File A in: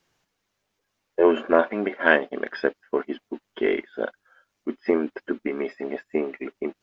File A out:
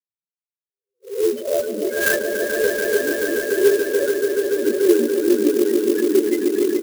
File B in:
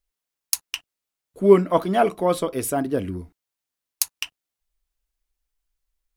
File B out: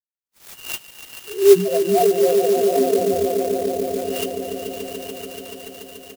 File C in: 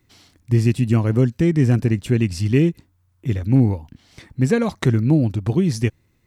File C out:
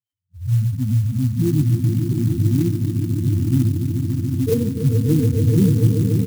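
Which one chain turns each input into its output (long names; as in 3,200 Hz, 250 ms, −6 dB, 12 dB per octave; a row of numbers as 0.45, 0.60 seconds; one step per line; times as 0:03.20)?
peak hold with a rise ahead of every peak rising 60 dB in 0.50 s
noise gate −37 dBFS, range −32 dB
high-pass filter 68 Hz 12 dB per octave
high shelf with overshoot 3,800 Hz −6.5 dB, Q 3
speech leveller within 5 dB 2 s
spectral peaks only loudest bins 2
double-tracking delay 20 ms −12 dB
echo that builds up and dies away 144 ms, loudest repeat 5, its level −8.5 dB
converter with an unsteady clock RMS 0.056 ms
loudness normalisation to −19 LKFS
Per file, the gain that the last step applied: +6.5, +1.0, +2.0 decibels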